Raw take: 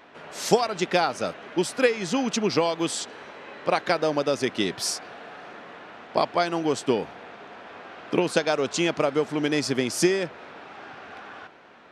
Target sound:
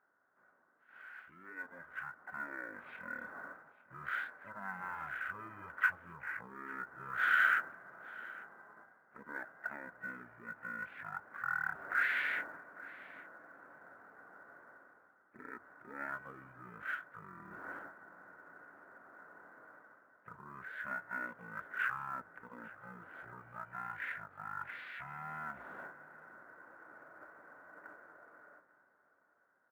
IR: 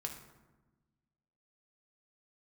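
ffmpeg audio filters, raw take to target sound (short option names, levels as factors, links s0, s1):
-filter_complex "[0:a]aemphasis=mode=reproduction:type=75kf,agate=range=0.282:threshold=0.01:ratio=16:detection=peak,areverse,acompressor=threshold=0.0224:ratio=16,areverse,alimiter=level_in=2.51:limit=0.0631:level=0:latency=1:release=67,volume=0.398,dynaudnorm=f=140:g=11:m=3.98,asetrate=17684,aresample=44100,bandpass=f=1500:t=q:w=14:csg=0,acrusher=bits=8:mode=log:mix=0:aa=0.000001,asplit=2[s0][s1];[s1]asetrate=55563,aresample=44100,atempo=0.793701,volume=0.2[s2];[s0][s2]amix=inputs=2:normalize=0,aecho=1:1:850:0.1,volume=4.22"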